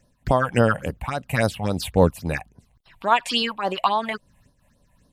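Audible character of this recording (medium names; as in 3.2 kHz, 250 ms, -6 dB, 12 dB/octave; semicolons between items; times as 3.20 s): phasing stages 6, 3.6 Hz, lowest notch 340–2300 Hz; random flutter of the level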